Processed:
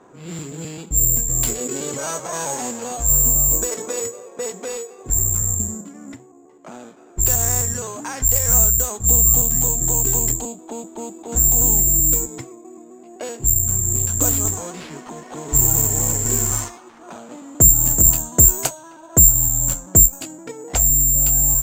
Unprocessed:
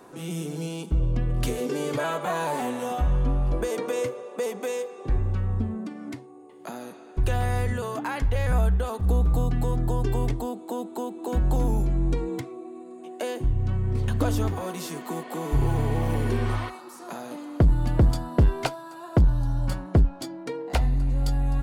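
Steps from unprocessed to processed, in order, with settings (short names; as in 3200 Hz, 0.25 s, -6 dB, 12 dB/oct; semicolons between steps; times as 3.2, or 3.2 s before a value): trilling pitch shifter -1 st, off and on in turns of 0.129 s; careless resampling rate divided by 6×, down none, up zero stuff; low-pass opened by the level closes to 1900 Hz, open at -9.5 dBFS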